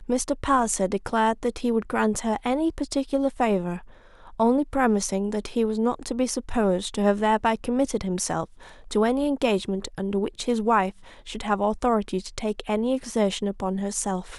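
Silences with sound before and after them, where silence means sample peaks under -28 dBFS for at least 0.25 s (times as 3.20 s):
3.77–4.40 s
8.44–8.91 s
10.90–11.30 s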